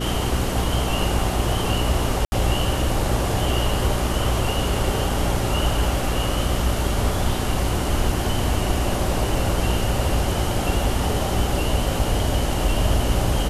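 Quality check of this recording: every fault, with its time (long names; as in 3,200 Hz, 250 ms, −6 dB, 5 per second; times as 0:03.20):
mains hum 60 Hz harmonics 6 −26 dBFS
0:02.25–0:02.32: drop-out 70 ms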